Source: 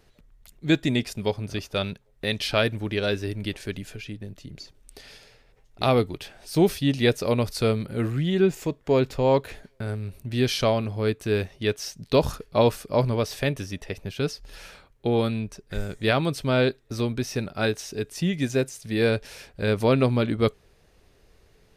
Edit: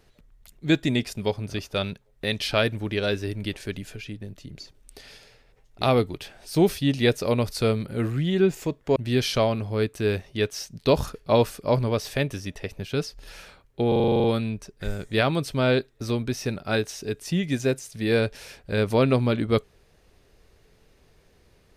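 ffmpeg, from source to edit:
-filter_complex "[0:a]asplit=11[s0][s1][s2][s3][s4][s5][s6][s7][s8][s9][s10];[s0]atrim=end=8.962[s11];[s1]atrim=start=10.218:end=15.182[s12];[s2]atrim=start=15.138:end=15.182[s13];[s3]atrim=start=15.138:end=15.182[s14];[s4]atrim=start=15.138:end=15.182[s15];[s5]atrim=start=15.138:end=15.182[s16];[s6]atrim=start=15.138:end=15.182[s17];[s7]atrim=start=15.138:end=15.182[s18];[s8]atrim=start=15.138:end=15.182[s19];[s9]atrim=start=15.138:end=15.182[s20];[s10]atrim=start=15.138[s21];[s11][s12]acrossfade=d=0.004:c1=hsin:c2=hsin[s22];[s22][s13]acrossfade=d=0.004:c1=hsin:c2=hsin[s23];[s23][s14]acrossfade=d=0.004:c1=hsin:c2=hsin[s24];[s24][s15]acrossfade=d=0.004:c1=hsin:c2=hsin[s25];[s25][s16]acrossfade=d=0.004:c1=hsin:c2=hsin[s26];[s26][s17]acrossfade=d=0.004:c1=hsin:c2=hsin[s27];[s27][s18]acrossfade=d=0.004:c1=hsin:c2=hsin[s28];[s28][s19]acrossfade=d=0.004:c1=hsin:c2=hsin[s29];[s29][s20]acrossfade=d=0.004:c1=hsin:c2=hsin[s30];[s30][s21]acrossfade=d=0.004:c1=hsin:c2=hsin"

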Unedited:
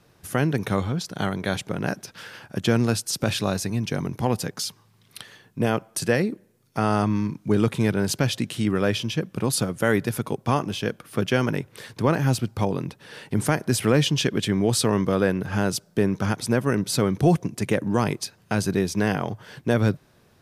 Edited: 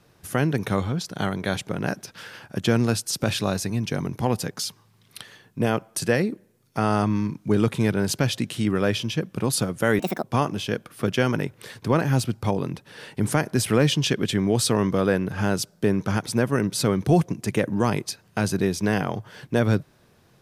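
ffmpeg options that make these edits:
-filter_complex "[0:a]asplit=3[s0][s1][s2];[s0]atrim=end=9.994[s3];[s1]atrim=start=9.99:end=10.38,asetpts=PTS-STARTPTS,asetrate=69237,aresample=44100[s4];[s2]atrim=start=10.376[s5];[s3][s4]acrossfade=d=0.004:c1=hsin:c2=hsin[s6];[s6][s5]acrossfade=d=0.004:c1=hsin:c2=hsin"

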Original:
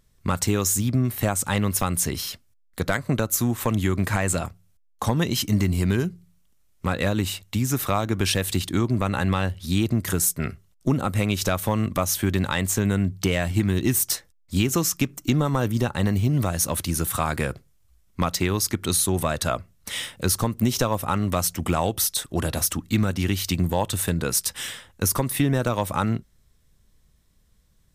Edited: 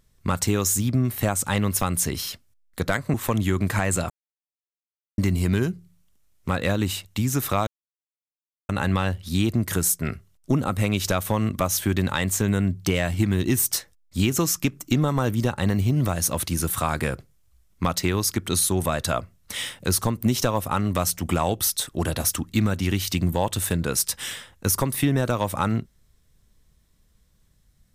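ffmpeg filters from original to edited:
-filter_complex "[0:a]asplit=6[s0][s1][s2][s3][s4][s5];[s0]atrim=end=3.142[s6];[s1]atrim=start=3.508:end=4.47,asetpts=PTS-STARTPTS,afade=t=out:st=0.958:d=0.004:c=hsin[s7];[s2]atrim=start=4.47:end=5.55,asetpts=PTS-STARTPTS,volume=0[s8];[s3]atrim=start=5.55:end=8.04,asetpts=PTS-STARTPTS,afade=t=in:d=0.004:c=hsin,afade=t=out:st=2.486:d=0.004:c=hsin[s9];[s4]atrim=start=8.04:end=9.06,asetpts=PTS-STARTPTS,volume=0[s10];[s5]atrim=start=9.06,asetpts=PTS-STARTPTS,afade=t=in:d=0.004:c=hsin[s11];[s7][s8][s9][s10][s11]concat=n=5:v=0:a=1[s12];[s6][s12]acrossfade=d=0.004:c1=hsin:c2=hsin"

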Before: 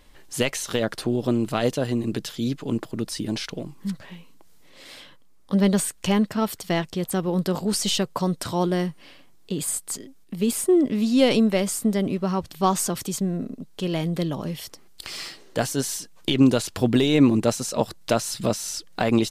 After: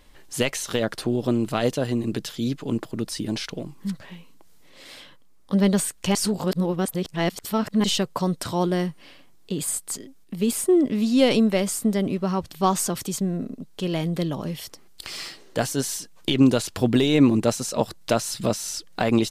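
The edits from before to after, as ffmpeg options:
-filter_complex "[0:a]asplit=3[s0][s1][s2];[s0]atrim=end=6.152[s3];[s1]atrim=start=6.148:end=7.842,asetpts=PTS-STARTPTS,areverse[s4];[s2]atrim=start=7.838[s5];[s3][s4]acrossfade=d=0.004:c1=hsin:c2=hsin[s6];[s6][s5]acrossfade=d=0.004:c1=hsin:c2=hsin"

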